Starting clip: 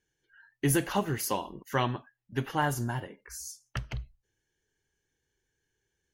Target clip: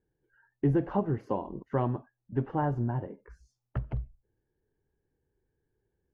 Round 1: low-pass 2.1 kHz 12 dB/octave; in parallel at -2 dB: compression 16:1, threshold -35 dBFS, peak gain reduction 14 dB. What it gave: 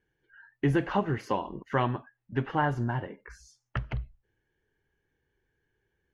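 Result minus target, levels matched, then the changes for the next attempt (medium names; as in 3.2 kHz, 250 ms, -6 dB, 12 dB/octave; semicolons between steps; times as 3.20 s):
2 kHz band +11.0 dB
change: low-pass 740 Hz 12 dB/octave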